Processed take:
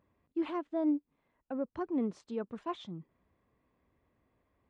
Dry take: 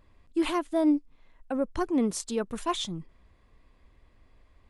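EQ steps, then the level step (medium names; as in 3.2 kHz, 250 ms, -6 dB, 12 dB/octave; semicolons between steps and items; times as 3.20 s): high-pass 120 Hz 12 dB/octave; tape spacing loss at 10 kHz 33 dB; -5.5 dB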